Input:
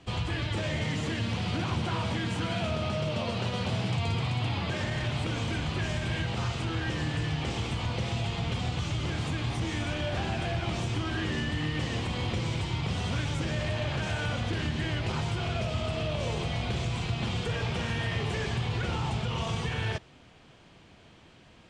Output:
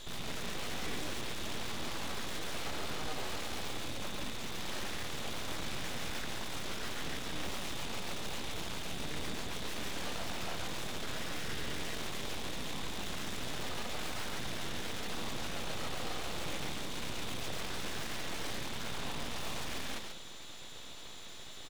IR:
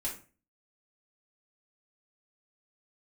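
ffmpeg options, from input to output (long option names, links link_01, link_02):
-filter_complex "[0:a]aeval=exprs='(tanh(126*val(0)+0.05)-tanh(0.05))/126':channel_layout=same,aecho=1:1:139:0.562,asplit=2[link_01][link_02];[1:a]atrim=start_sample=2205[link_03];[link_02][link_03]afir=irnorm=-1:irlink=0,volume=-9.5dB[link_04];[link_01][link_04]amix=inputs=2:normalize=0,aeval=exprs='val(0)+0.00251*sin(2*PI*3600*n/s)':channel_layout=same,aeval=exprs='abs(val(0))':channel_layout=same,volume=5dB"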